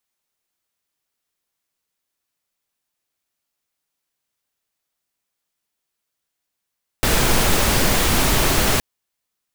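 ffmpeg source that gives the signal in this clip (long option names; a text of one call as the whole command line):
ffmpeg -f lavfi -i "anoisesrc=color=pink:amplitude=0.767:duration=1.77:sample_rate=44100:seed=1" out.wav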